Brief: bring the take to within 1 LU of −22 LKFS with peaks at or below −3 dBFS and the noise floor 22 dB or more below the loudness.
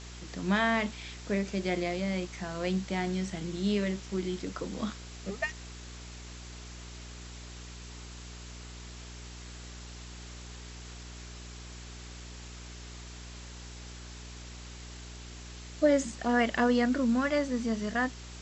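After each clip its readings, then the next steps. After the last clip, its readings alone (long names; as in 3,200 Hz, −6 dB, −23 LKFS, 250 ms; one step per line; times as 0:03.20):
mains hum 60 Hz; hum harmonics up to 420 Hz; level of the hum −44 dBFS; background noise floor −45 dBFS; target noise floor −53 dBFS; integrated loudness −30.5 LKFS; sample peak −14.0 dBFS; target loudness −22.0 LKFS
→ hum removal 60 Hz, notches 7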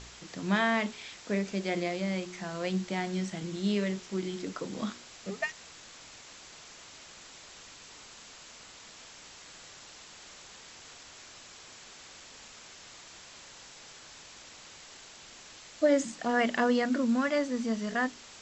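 mains hum none found; background noise floor −51 dBFS; target noise floor −53 dBFS
→ broadband denoise 6 dB, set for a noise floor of −51 dBFS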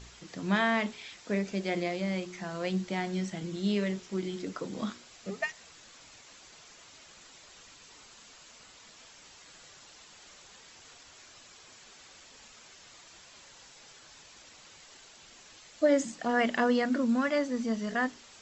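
background noise floor −55 dBFS; integrated loudness −31.0 LKFS; sample peak −14.0 dBFS; target loudness −22.0 LKFS
→ level +9 dB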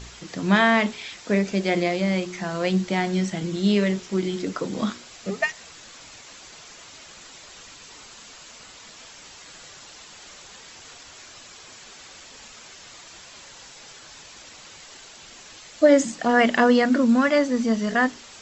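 integrated loudness −22.0 LKFS; sample peak −5.0 dBFS; background noise floor −46 dBFS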